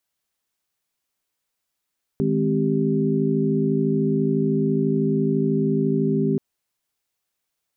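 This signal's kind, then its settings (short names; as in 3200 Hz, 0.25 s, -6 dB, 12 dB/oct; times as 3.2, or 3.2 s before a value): chord D#3/G#3/C4/G4 sine, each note -23.5 dBFS 4.18 s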